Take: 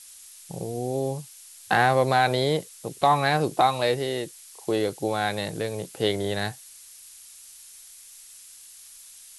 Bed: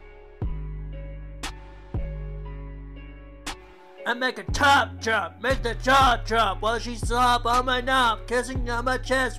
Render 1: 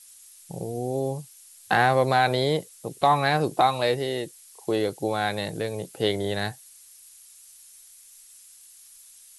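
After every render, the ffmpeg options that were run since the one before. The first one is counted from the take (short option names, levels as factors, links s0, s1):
-af "afftdn=nr=6:nf=-48"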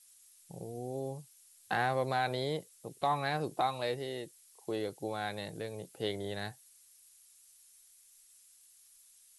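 -af "volume=0.282"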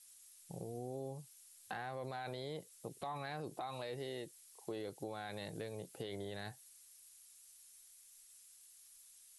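-af "alimiter=level_in=1.68:limit=0.0631:level=0:latency=1:release=31,volume=0.596,acompressor=threshold=0.00891:ratio=3"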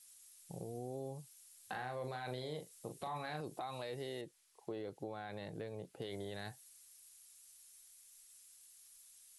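-filter_complex "[0:a]asettb=1/sr,asplit=3[s0][s1][s2];[s0]atrim=end=1.674[s3];[s1]atrim=start=1.67:end=3.41,asetpts=PTS-STARTPTS,afade=t=in:d=0.004:c=qsin,afade=t=out:st=1.736:d=0.004:c=qsin,asplit=2[s4][s5];[s5]adelay=40,volume=0.447[s6];[s4][s6]amix=inputs=2:normalize=0,atrim=end_sample=76734[s7];[s2]atrim=start=3.406[s8];[s3][s7]acrossfade=d=0.004:c1=hsin:c2=qsin[s9];[s9][s8]acrossfade=d=0.004:c1=qsin:c2=hsin,asettb=1/sr,asplit=3[s10][s11][s12];[s10]atrim=end=4.214[s13];[s11]atrim=start=4.21:end=6.02,asetpts=PTS-STARTPTS,afade=t=in:d=0.004:c=qsin,afade=t=out:st=1.806:d=0.004:c=qsin,lowpass=f=2200:p=1[s14];[s12]atrim=start=6.016[s15];[s13][s14]acrossfade=d=0.004:c1=hsin:c2=qsin[s16];[s16][s15]acrossfade=d=0.004:c1=qsin:c2=hsin"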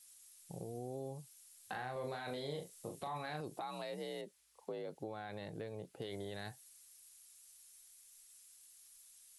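-filter_complex "[0:a]asettb=1/sr,asplit=3[s0][s1][s2];[s0]atrim=end=1.934[s3];[s1]atrim=start=1.93:end=3,asetpts=PTS-STARTPTS,afade=t=in:d=0.004:c=qsin,afade=t=out:st=1.066:d=0.004:c=qsin,asplit=2[s4][s5];[s5]adelay=28,volume=0.631[s6];[s4][s6]amix=inputs=2:normalize=0,atrim=end_sample=47187[s7];[s2]atrim=start=2.996[s8];[s3][s7]acrossfade=d=0.004:c1=hsin:c2=qsin[s9];[s9][s8]acrossfade=d=0.004:c1=qsin:c2=hsin,asettb=1/sr,asplit=3[s10][s11][s12];[s10]atrim=end=3.614[s13];[s11]atrim=start=3.61:end=4.95,asetpts=PTS-STARTPTS,afade=t=in:d=0.004:c=qsin,afade=t=out:st=1.336:d=0.004:c=qsin,afreqshift=52[s14];[s12]atrim=start=4.946[s15];[s13][s14]acrossfade=d=0.004:c1=hsin:c2=qsin[s16];[s16][s15]acrossfade=d=0.004:c1=qsin:c2=hsin"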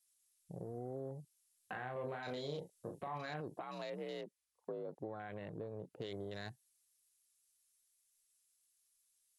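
-af "bandreject=f=820:w=12,afwtdn=0.002"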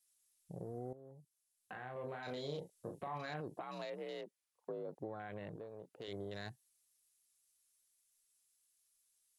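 -filter_complex "[0:a]asettb=1/sr,asplit=3[s0][s1][s2];[s0]atrim=end=3.854[s3];[s1]atrim=start=3.85:end=4.7,asetpts=PTS-STARTPTS,afade=t=in:d=0.004:c=qsin,afade=t=out:st=0.846:d=0.004:c=qsin,bass=f=250:g=-7,treble=f=4000:g=-2[s4];[s2]atrim=start=4.696[s5];[s3][s4]acrossfade=d=0.004:c1=hsin:c2=qsin[s6];[s6][s5]acrossfade=d=0.004:c1=qsin:c2=hsin,asettb=1/sr,asplit=3[s7][s8][s9];[s7]atrim=end=5.564[s10];[s8]atrim=start=5.56:end=6.08,asetpts=PTS-STARTPTS,afade=t=in:d=0.004:c=qsin,afade=t=out:st=0.516:d=0.004:c=qsin,lowshelf=f=310:g=-11.5[s11];[s9]atrim=start=6.076[s12];[s10][s11]acrossfade=d=0.004:c1=hsin:c2=qsin[s13];[s13][s12]acrossfade=d=0.004:c1=qsin:c2=hsin,asplit=2[s14][s15];[s14]atrim=end=0.93,asetpts=PTS-STARTPTS,afade=t=out:st=0.926:d=0.004:c=hsin:silence=0.188365[s16];[s15]atrim=start=0.93,asetpts=PTS-STARTPTS,afade=t=in:d=1.57:silence=0.188365[s17];[s16][s17]concat=n=2:v=0:a=1"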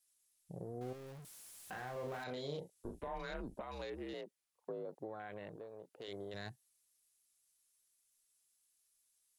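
-filter_complex "[0:a]asettb=1/sr,asplit=3[s0][s1][s2];[s0]atrim=end=0.814[s3];[s1]atrim=start=0.81:end=2.24,asetpts=PTS-STARTPTS,afade=t=in:d=0.004:c=qsin,afade=t=out:st=1.426:d=0.004:c=qsin,aeval=exprs='val(0)+0.5*0.00335*sgn(val(0))':c=same[s4];[s2]atrim=start=2.236[s5];[s3][s4]acrossfade=d=0.004:c1=hsin:c2=qsin[s6];[s6][s5]acrossfade=d=0.004:c1=qsin:c2=hsin,asettb=1/sr,asplit=3[s7][s8][s9];[s7]atrim=end=2.754[s10];[s8]atrim=start=2.75:end=4.14,asetpts=PTS-STARTPTS,afade=t=in:d=0.004:c=qsin,afade=t=out:st=1.386:d=0.004:c=qsin,afreqshift=-110[s11];[s9]atrim=start=4.136[s12];[s10][s11]acrossfade=d=0.004:c1=hsin:c2=qsin[s13];[s13][s12]acrossfade=d=0.004:c1=qsin:c2=hsin,asettb=1/sr,asplit=3[s14][s15][s16];[s14]atrim=end=4.854[s17];[s15]atrim=start=4.85:end=6.34,asetpts=PTS-STARTPTS,afade=t=in:d=0.004:c=qsin,afade=t=out:st=1.486:d=0.004:c=qsin,bass=f=250:g=-6,treble=f=4000:g=1[s18];[s16]atrim=start=6.336[s19];[s17][s18]acrossfade=d=0.004:c1=hsin:c2=qsin[s20];[s20][s19]acrossfade=d=0.004:c1=qsin:c2=hsin"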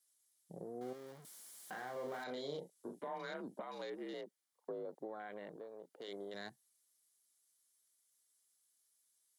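-af "highpass=f=180:w=0.5412,highpass=f=180:w=1.3066,bandreject=f=2600:w=5.9"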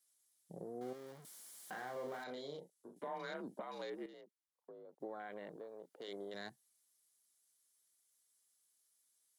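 -filter_complex "[0:a]asplit=4[s0][s1][s2][s3];[s0]atrim=end=2.96,asetpts=PTS-STARTPTS,afade=t=out:st=1.92:d=1.04:silence=0.316228[s4];[s1]atrim=start=2.96:end=4.062,asetpts=PTS-STARTPTS,afade=t=in:d=0.004:c=hsin:silence=0.316228[s5];[s2]atrim=start=4.058:end=5.002,asetpts=PTS-STARTPTS,volume=0.266[s6];[s3]atrim=start=4.998[s7];[s4][s5]concat=n=2:v=0:a=1[s8];[s8][s6]acrossfade=d=0.004:c1=hsin:c2=hsin[s9];[s9][s7]acrossfade=d=0.004:c1=hsin:c2=hsin"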